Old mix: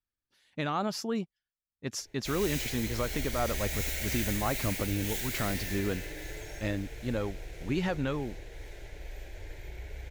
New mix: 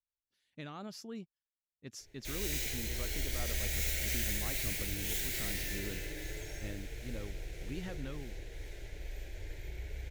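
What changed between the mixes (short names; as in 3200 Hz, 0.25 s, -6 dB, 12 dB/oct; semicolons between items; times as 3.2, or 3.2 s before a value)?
speech -11.0 dB; master: add bell 920 Hz -6.5 dB 1.6 oct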